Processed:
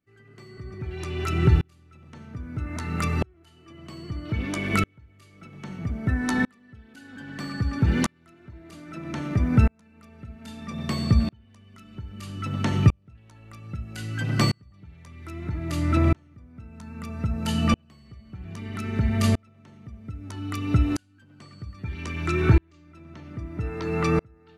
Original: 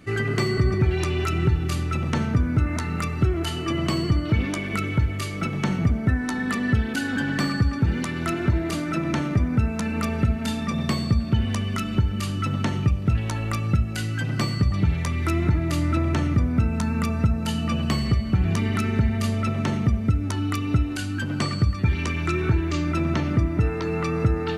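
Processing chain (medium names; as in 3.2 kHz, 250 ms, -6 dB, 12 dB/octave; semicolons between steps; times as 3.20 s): sawtooth tremolo in dB swelling 0.62 Hz, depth 40 dB; trim +5.5 dB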